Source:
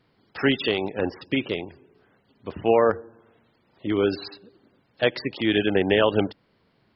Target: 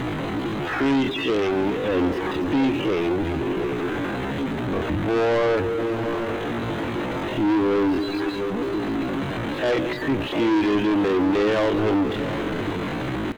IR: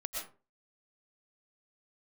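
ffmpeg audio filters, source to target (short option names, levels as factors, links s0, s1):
-filter_complex "[0:a]aeval=exprs='val(0)+0.5*0.0708*sgn(val(0))':c=same,highshelf=f=3600:g=-11,atempo=0.52,superequalizer=6b=2:14b=0.316,acrossover=split=4400[s0][s1];[s1]acompressor=threshold=0.00178:ratio=4:attack=1:release=60[s2];[s0][s2]amix=inputs=2:normalize=0,asoftclip=type=tanh:threshold=0.0944,aecho=1:1:704|720:0.2|0.15,volume=1.41"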